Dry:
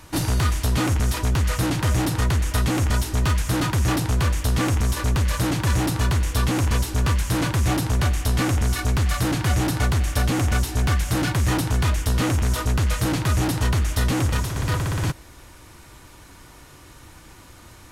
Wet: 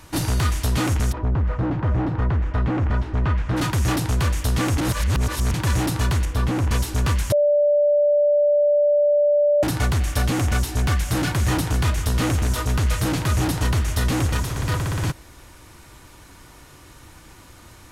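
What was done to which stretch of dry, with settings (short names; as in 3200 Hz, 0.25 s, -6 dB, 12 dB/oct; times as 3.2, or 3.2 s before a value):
1.11–3.56 LPF 1000 Hz -> 2000 Hz
4.78–5.54 reverse
6.25–6.71 high shelf 2700 Hz -10.5 dB
7.32–9.63 bleep 586 Hz -14 dBFS
11–14.58 echo 0.154 s -13 dB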